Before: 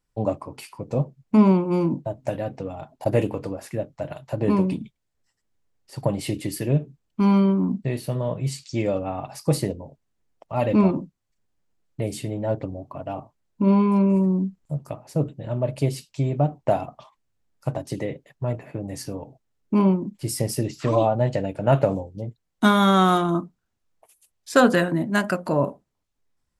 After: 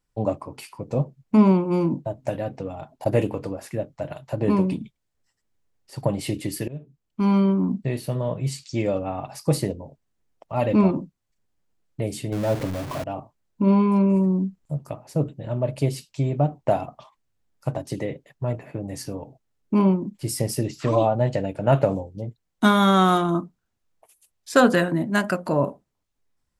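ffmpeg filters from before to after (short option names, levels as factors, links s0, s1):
-filter_complex "[0:a]asettb=1/sr,asplit=3[s0][s1][s2];[s0]atrim=end=12.324[s3];[s1]atrim=start=12.32:end=13.04,asetpts=PTS-STARTPTS,afade=t=in:d=0.004:c=qsin,afade=t=out:st=0.716:d=0.004:c=qsin,aeval=exprs='val(0)+0.5*0.0398*sgn(val(0))':c=same[s4];[s2]atrim=start=13.036[s5];[s3][s4]acrossfade=d=0.004:c1=hsin:c2=qsin[s6];[s6][s5]acrossfade=d=0.004:c1=qsin:c2=hsin,asplit=2[s7][s8];[s7]atrim=end=6.68,asetpts=PTS-STARTPTS,afade=t=out:st=6.676:d=0.004:c=hsin:silence=0.0794328[s9];[s8]atrim=start=6.68,asetpts=PTS-STARTPTS,afade=t=in:d=1.01:c=qsin:silence=0.0794328[s10];[s9][s10]concat=n=2:v=0:a=1"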